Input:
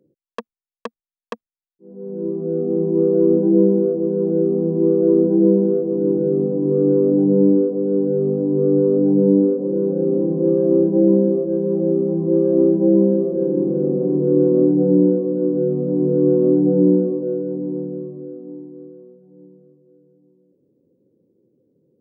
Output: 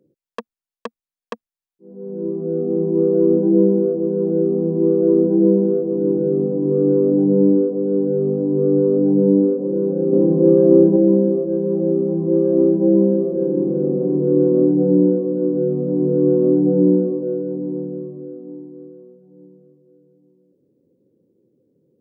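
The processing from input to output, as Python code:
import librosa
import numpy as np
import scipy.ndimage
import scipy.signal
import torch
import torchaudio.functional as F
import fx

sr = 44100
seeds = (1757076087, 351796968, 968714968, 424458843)

y = fx.edit(x, sr, fx.clip_gain(start_s=10.13, length_s=0.83, db=4.5), tone=tone)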